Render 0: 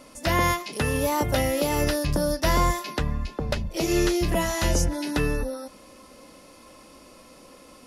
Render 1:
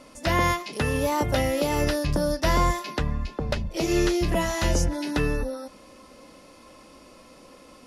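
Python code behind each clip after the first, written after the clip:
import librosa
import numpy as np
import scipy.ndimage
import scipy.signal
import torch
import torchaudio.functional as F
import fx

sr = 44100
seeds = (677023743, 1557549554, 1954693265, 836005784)

y = fx.high_shelf(x, sr, hz=11000.0, db=-11.0)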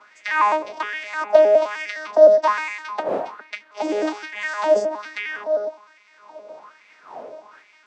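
y = fx.vocoder_arp(x, sr, chord='bare fifth', root=56, every_ms=103)
y = fx.dmg_wind(y, sr, seeds[0], corner_hz=260.0, level_db=-40.0)
y = fx.filter_lfo_highpass(y, sr, shape='sine', hz=1.2, low_hz=560.0, high_hz=2200.0, q=5.0)
y = y * 10.0 ** (5.0 / 20.0)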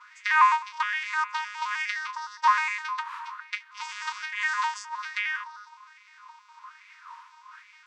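y = fx.brickwall_highpass(x, sr, low_hz=910.0)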